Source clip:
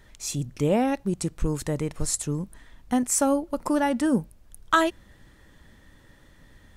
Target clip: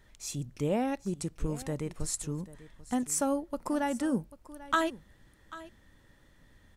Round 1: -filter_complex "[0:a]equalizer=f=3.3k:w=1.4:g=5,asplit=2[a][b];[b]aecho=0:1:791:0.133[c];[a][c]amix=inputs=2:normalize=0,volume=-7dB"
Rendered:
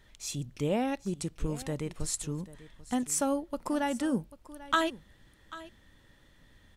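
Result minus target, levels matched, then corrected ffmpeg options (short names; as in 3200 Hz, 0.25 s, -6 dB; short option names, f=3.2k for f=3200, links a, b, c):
4000 Hz band +3.5 dB
-filter_complex "[0:a]asplit=2[a][b];[b]aecho=0:1:791:0.133[c];[a][c]amix=inputs=2:normalize=0,volume=-7dB"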